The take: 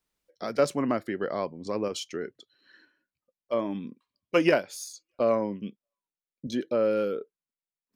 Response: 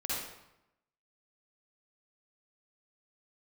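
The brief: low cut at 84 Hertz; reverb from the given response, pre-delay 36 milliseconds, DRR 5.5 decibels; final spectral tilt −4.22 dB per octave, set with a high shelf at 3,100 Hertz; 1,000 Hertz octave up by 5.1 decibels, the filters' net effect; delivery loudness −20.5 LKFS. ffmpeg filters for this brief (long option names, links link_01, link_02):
-filter_complex "[0:a]highpass=84,equalizer=frequency=1000:width_type=o:gain=6,highshelf=frequency=3100:gain=5.5,asplit=2[link_01][link_02];[1:a]atrim=start_sample=2205,adelay=36[link_03];[link_02][link_03]afir=irnorm=-1:irlink=0,volume=-10.5dB[link_04];[link_01][link_04]amix=inputs=2:normalize=0,volume=5.5dB"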